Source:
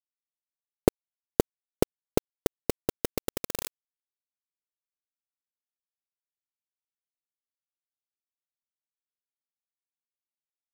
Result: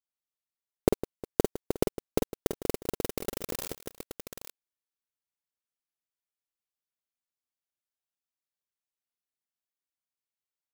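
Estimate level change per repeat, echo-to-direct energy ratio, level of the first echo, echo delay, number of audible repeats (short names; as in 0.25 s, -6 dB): no steady repeat, -3.0 dB, -6.5 dB, 47 ms, 4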